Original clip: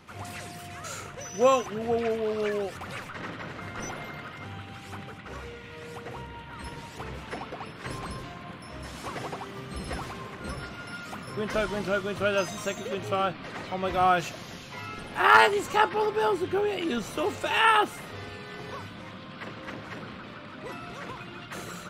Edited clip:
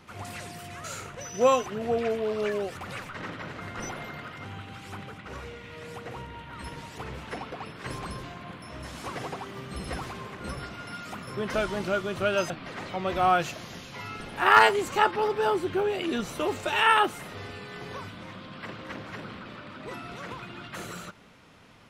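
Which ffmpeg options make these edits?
-filter_complex "[0:a]asplit=2[s0][s1];[s0]atrim=end=12.502[s2];[s1]atrim=start=13.278[s3];[s2][s3]acrossfade=d=0.004:c1=hsin:c2=hsin"

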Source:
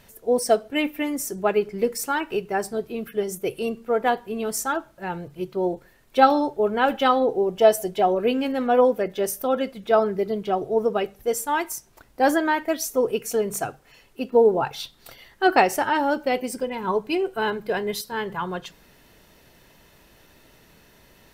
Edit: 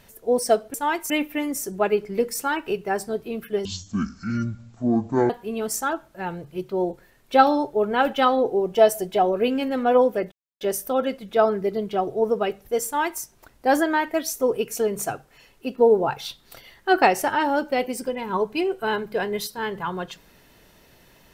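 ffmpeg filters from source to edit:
-filter_complex "[0:a]asplit=6[s0][s1][s2][s3][s4][s5];[s0]atrim=end=0.742[s6];[s1]atrim=start=11.398:end=11.762[s7];[s2]atrim=start=0.738:end=3.294[s8];[s3]atrim=start=3.29:end=4.13,asetpts=PTS-STARTPTS,asetrate=22491,aresample=44100,atrim=end_sample=72635,asetpts=PTS-STARTPTS[s9];[s4]atrim=start=4.126:end=9.15,asetpts=PTS-STARTPTS,afade=t=out:st=5.02:d=0.004:c=hsin,apad=pad_dur=0.29[s10];[s5]atrim=start=9.15,asetpts=PTS-STARTPTS,afade=t=in:d=0.004:c=hsin[s11];[s6][s7]acrossfade=d=0.004:c1=hsin:c2=hsin[s12];[s12][s8]acrossfade=d=0.004:c1=hsin:c2=hsin[s13];[s13][s9]acrossfade=d=0.004:c1=hsin:c2=hsin[s14];[s10][s11]concat=n=2:v=0:a=1[s15];[s14][s15]acrossfade=d=0.004:c1=hsin:c2=hsin"

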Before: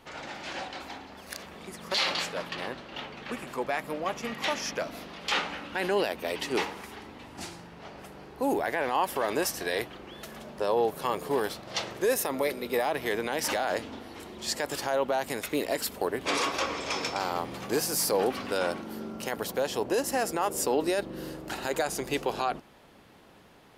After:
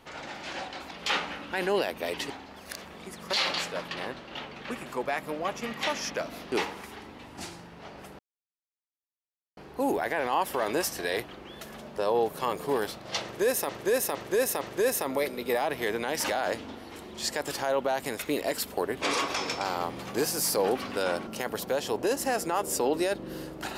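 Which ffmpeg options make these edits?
-filter_complex "[0:a]asplit=10[s0][s1][s2][s3][s4][s5][s6][s7][s8][s9];[s0]atrim=end=0.912[s10];[s1]atrim=start=5.128:end=6.522[s11];[s2]atrim=start=0.908:end=5.132[s12];[s3]atrim=start=6.518:end=8.19,asetpts=PTS-STARTPTS,afade=t=out:st=1.668:d=0.004:c=hsin,apad=pad_dur=1.38[s13];[s4]atrim=start=8.19:end=12.312,asetpts=PTS-STARTPTS,afade=t=in:d=0.004:c=hsin[s14];[s5]atrim=start=11.848:end=12.312[s15];[s6]atrim=start=11.848:end=12.312[s16];[s7]atrim=start=11.848:end=16.602[s17];[s8]atrim=start=16.908:end=18.822[s18];[s9]atrim=start=19.138[s19];[s10][s11]acrossfade=d=0.004:c1=hsin:c2=hsin[s20];[s20][s12]acrossfade=d=0.004:c1=hsin:c2=hsin[s21];[s13][s14]concat=n=2:v=0:a=1[s22];[s21][s22]acrossfade=d=0.004:c1=hsin:c2=hsin[s23];[s23][s15]acrossfade=d=0.004:c1=hsin:c2=hsin[s24];[s24][s16]acrossfade=d=0.004:c1=hsin:c2=hsin[s25];[s25][s17]acrossfade=d=0.004:c1=hsin:c2=hsin[s26];[s26][s18]acrossfade=d=0.004:c1=hsin:c2=hsin[s27];[s27][s19]acrossfade=d=0.004:c1=hsin:c2=hsin"

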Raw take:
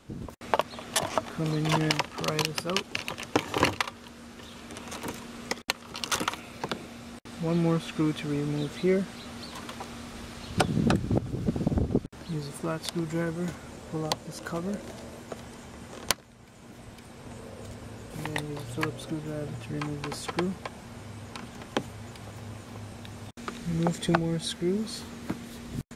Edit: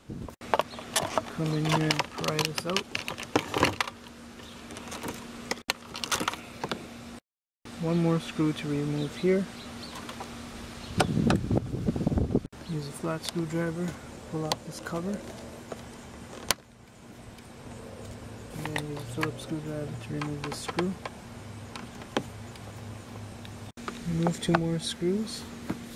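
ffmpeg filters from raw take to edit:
-filter_complex "[0:a]asplit=2[s0][s1];[s0]atrim=end=7.22,asetpts=PTS-STARTPTS,afade=t=out:st=7.216:d=0.004:c=hsin,apad=pad_dur=0.4[s2];[s1]atrim=start=7.22,asetpts=PTS-STARTPTS,afade=t=in:d=0.004:c=hsin[s3];[s2][s3]concat=n=2:v=0:a=1"

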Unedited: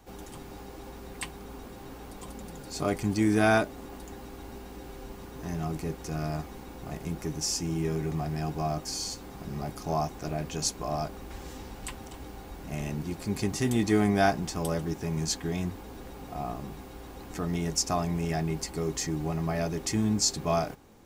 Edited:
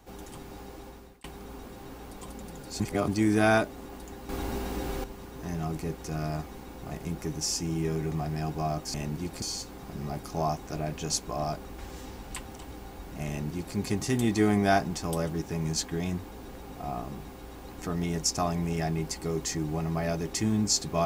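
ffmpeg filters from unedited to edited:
-filter_complex "[0:a]asplit=8[s0][s1][s2][s3][s4][s5][s6][s7];[s0]atrim=end=1.24,asetpts=PTS-STARTPTS,afade=t=out:st=0.63:d=0.61:c=qsin[s8];[s1]atrim=start=1.24:end=2.802,asetpts=PTS-STARTPTS,afade=t=in:d=0.004:c=hsin[s9];[s2]atrim=start=2.798:end=3.082,asetpts=PTS-STARTPTS,areverse[s10];[s3]atrim=start=3.078:end=4.292[s11];[s4]atrim=start=4.288:end=5.042,asetpts=PTS-STARTPTS,volume=3.16[s12];[s5]atrim=start=5.038:end=8.942[s13];[s6]atrim=start=12.798:end=13.282[s14];[s7]atrim=start=8.938[s15];[s8][s9]concat=n=2:v=0:a=1[s16];[s16][s10]acrossfade=d=0.004:c1=hsin:c2=hsin[s17];[s17][s11]acrossfade=d=0.004:c1=hsin:c2=hsin[s18];[s18][s12]acrossfade=d=0.004:c1=hsin:c2=hsin[s19];[s19][s13]acrossfade=d=0.004:c1=hsin:c2=hsin[s20];[s20][s14]acrossfade=d=0.004:c1=hsin:c2=hsin[s21];[s21][s15]acrossfade=d=0.004:c1=hsin:c2=hsin"

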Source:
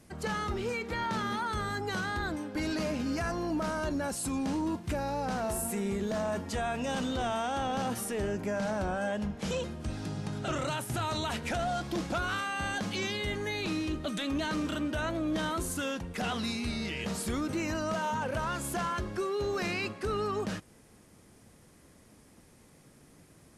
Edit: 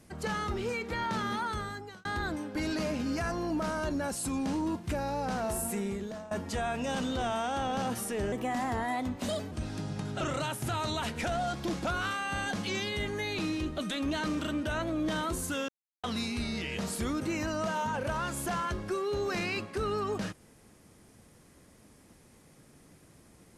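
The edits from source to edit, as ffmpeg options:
-filter_complex "[0:a]asplit=7[s0][s1][s2][s3][s4][s5][s6];[s0]atrim=end=2.05,asetpts=PTS-STARTPTS,afade=t=out:st=1.45:d=0.6[s7];[s1]atrim=start=2.05:end=6.31,asetpts=PTS-STARTPTS,afade=t=in:d=0.004:c=hsin,afade=t=out:st=3.71:d=0.55:silence=0.125893[s8];[s2]atrim=start=6.31:end=8.324,asetpts=PTS-STARTPTS,afade=t=in:d=0.004:c=hsin:silence=0.125893[s9];[s3]atrim=start=8.32:end=9.79,asetpts=PTS-STARTPTS,asetrate=54243,aresample=44100[s10];[s4]atrim=start=9.786:end=15.96,asetpts=PTS-STARTPTS,afade=t=out:st=6.17:d=0.004:c=hsin[s11];[s5]atrim=start=15.96:end=16.31,asetpts=PTS-STARTPTS,volume=0[s12];[s6]atrim=start=16.31,asetpts=PTS-STARTPTS,afade=t=in:d=0.004:c=hsin[s13];[s7][s8][s9]concat=n=3:v=0:a=1[s14];[s14][s10]acrossfade=d=0.004:c1=hsin:c2=hsin[s15];[s11][s12][s13]concat=n=3:v=0:a=1[s16];[s15][s16]acrossfade=d=0.004:c1=hsin:c2=hsin"

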